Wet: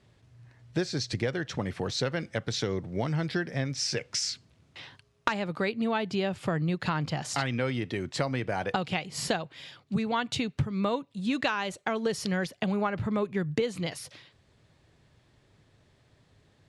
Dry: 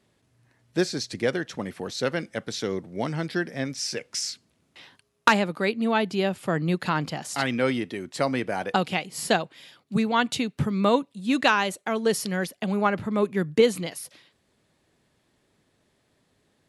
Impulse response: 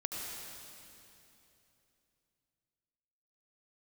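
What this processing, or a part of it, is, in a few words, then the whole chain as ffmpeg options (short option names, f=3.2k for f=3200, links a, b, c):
jukebox: -af "lowpass=6.7k,lowshelf=f=160:t=q:w=1.5:g=7,acompressor=threshold=-29dB:ratio=5,volume=3dB"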